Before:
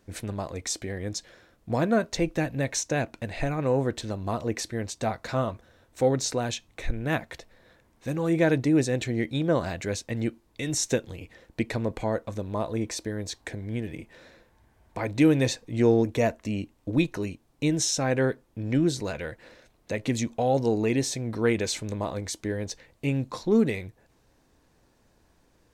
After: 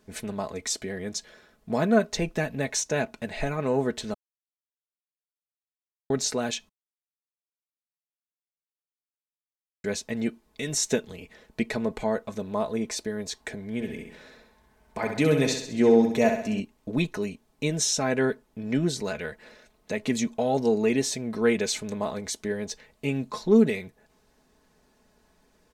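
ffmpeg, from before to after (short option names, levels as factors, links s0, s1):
-filter_complex "[0:a]asettb=1/sr,asplit=3[s0][s1][s2];[s0]atrim=end=13.744[s3];[s1]atrim=start=13.74:end=16.6,asetpts=PTS-STARTPTS,afade=t=in:d=0.004:c=qsin,afade=t=out:st=2.856:d=0.004:c=qsin,aecho=1:1:65|130|195|260|325|390:0.501|0.241|0.115|0.0554|0.0266|0.0128,atrim=end_sample=126126[s4];[s2]atrim=start=16.596[s5];[s3][s4]acrossfade=d=0.004:c1=hsin:c2=qsin[s6];[s6][s5]acrossfade=d=0.004:c1=qsin:c2=hsin,asplit=5[s7][s8][s9][s10][s11];[s7]atrim=end=4.14,asetpts=PTS-STARTPTS,afade=t=out:st=4.136:d=0.004:c=hsin[s12];[s8]atrim=start=4.14:end=6.1,asetpts=PTS-STARTPTS,volume=0[s13];[s9]atrim=start=6.1:end=6.69,asetpts=PTS-STARTPTS,afade=t=in:d=0.004:c=hsin,afade=t=out:st=0.586:d=0.004:c=hsin[s14];[s10]atrim=start=6.69:end=9.84,asetpts=PTS-STARTPTS,volume=0[s15];[s11]atrim=start=9.84,asetpts=PTS-STARTPTS,afade=t=in:d=0.004:c=hsin[s16];[s12][s13][s14][s15][s16]concat=n=5:v=0:a=1,lowshelf=f=120:g=-5,aecho=1:1:4.7:0.62"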